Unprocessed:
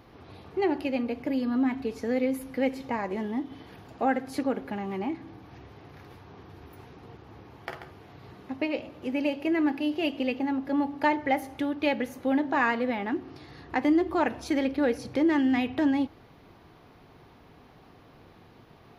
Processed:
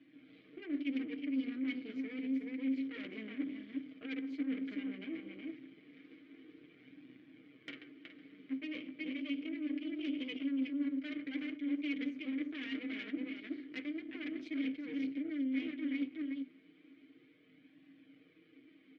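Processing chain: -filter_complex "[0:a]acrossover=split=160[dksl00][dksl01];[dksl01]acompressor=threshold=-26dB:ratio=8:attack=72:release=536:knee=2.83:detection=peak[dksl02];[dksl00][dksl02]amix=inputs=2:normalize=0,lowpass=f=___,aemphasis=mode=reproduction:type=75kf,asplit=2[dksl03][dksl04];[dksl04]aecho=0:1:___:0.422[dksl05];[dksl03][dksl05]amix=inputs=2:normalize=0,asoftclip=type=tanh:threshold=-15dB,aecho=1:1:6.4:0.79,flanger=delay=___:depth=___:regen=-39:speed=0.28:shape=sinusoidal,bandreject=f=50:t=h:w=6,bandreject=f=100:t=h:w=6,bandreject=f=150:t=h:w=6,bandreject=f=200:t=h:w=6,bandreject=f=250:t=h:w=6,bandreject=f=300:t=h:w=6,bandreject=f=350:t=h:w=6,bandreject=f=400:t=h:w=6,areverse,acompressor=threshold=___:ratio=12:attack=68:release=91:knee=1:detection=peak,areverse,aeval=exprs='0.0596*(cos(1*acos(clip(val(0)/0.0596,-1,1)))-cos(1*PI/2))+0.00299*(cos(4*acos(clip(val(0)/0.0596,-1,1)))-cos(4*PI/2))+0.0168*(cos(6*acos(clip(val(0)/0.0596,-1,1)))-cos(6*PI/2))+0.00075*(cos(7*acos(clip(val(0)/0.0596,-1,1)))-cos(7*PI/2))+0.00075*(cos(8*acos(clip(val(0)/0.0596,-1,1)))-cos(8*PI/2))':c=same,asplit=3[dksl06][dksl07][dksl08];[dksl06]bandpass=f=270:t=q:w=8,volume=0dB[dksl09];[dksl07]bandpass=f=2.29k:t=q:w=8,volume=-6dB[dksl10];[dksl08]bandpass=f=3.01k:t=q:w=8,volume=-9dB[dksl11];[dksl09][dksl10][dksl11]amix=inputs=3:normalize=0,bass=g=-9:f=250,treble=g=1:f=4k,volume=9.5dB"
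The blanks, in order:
6.6k, 371, 1.1, 4.4, -40dB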